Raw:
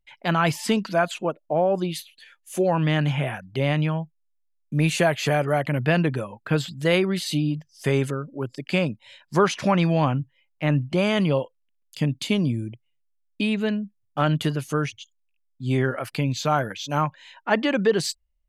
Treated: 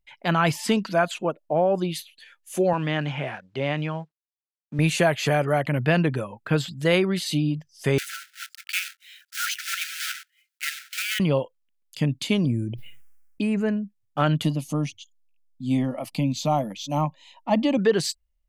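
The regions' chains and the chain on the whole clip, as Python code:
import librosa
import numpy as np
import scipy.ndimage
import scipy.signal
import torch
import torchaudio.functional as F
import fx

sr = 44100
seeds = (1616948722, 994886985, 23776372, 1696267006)

y = fx.chain(x, sr, fx.law_mismatch(coded='A'),
    fx.highpass(hz=250.0, slope=6),
    fx.air_absorb(metres=100.0), at=(2.73, 4.79))
y = fx.chain(y, sr, fx.block_float(bits=3),
    fx.brickwall_highpass(low_hz=1300.0), at=(7.98, 11.2))
y = fx.chain(y, sr, fx.env_phaser(low_hz=590.0, high_hz=3600.0, full_db=-23.5),
    fx.sustainer(db_per_s=41.0), at=(12.45, 13.77))
y = fx.chain(y, sr, fx.low_shelf(hz=240.0, db=9.0),
    fx.fixed_phaser(hz=410.0, stages=6), at=(14.44, 17.78))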